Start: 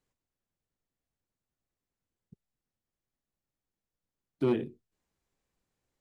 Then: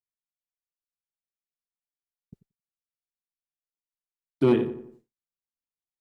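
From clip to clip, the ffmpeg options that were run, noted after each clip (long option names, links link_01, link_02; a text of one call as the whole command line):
ffmpeg -i in.wav -filter_complex "[0:a]asplit=2[link_01][link_02];[link_02]adelay=89,lowpass=frequency=2100:poles=1,volume=-11dB,asplit=2[link_03][link_04];[link_04]adelay=89,lowpass=frequency=2100:poles=1,volume=0.45,asplit=2[link_05][link_06];[link_06]adelay=89,lowpass=frequency=2100:poles=1,volume=0.45,asplit=2[link_07][link_08];[link_08]adelay=89,lowpass=frequency=2100:poles=1,volume=0.45,asplit=2[link_09][link_10];[link_10]adelay=89,lowpass=frequency=2100:poles=1,volume=0.45[link_11];[link_03][link_05][link_07][link_09][link_11]amix=inputs=5:normalize=0[link_12];[link_01][link_12]amix=inputs=2:normalize=0,agate=range=-33dB:threshold=-55dB:ratio=3:detection=peak,volume=7dB" out.wav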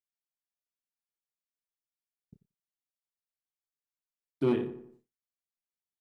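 ffmpeg -i in.wav -filter_complex "[0:a]asplit=2[link_01][link_02];[link_02]adelay=29,volume=-10.5dB[link_03];[link_01][link_03]amix=inputs=2:normalize=0,volume=-7dB" out.wav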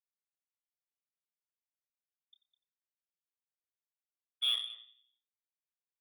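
ffmpeg -i in.wav -af "lowpass=frequency=3100:width_type=q:width=0.5098,lowpass=frequency=3100:width_type=q:width=0.6013,lowpass=frequency=3100:width_type=q:width=0.9,lowpass=frequency=3100:width_type=q:width=2.563,afreqshift=-3700,aecho=1:1:205:0.2,aeval=exprs='0.158*(cos(1*acos(clip(val(0)/0.158,-1,1)))-cos(1*PI/2))+0.00891*(cos(7*acos(clip(val(0)/0.158,-1,1)))-cos(7*PI/2))':channel_layout=same,volume=-5.5dB" out.wav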